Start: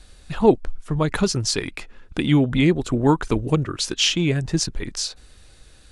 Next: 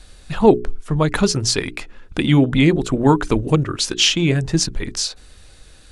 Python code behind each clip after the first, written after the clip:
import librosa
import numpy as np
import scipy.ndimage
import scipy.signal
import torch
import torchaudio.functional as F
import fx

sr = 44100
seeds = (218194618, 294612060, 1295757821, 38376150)

y = fx.hum_notches(x, sr, base_hz=60, count=7)
y = y * 10.0 ** (4.0 / 20.0)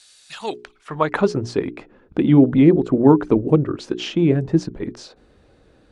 y = fx.filter_sweep_bandpass(x, sr, from_hz=6100.0, to_hz=340.0, start_s=0.41, end_s=1.43, q=0.81)
y = y * 10.0 ** (3.5 / 20.0)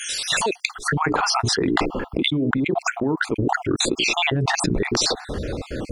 y = fx.spec_dropout(x, sr, seeds[0], share_pct=49)
y = fx.env_flatten(y, sr, amount_pct=100)
y = y * 10.0 ** (-13.0 / 20.0)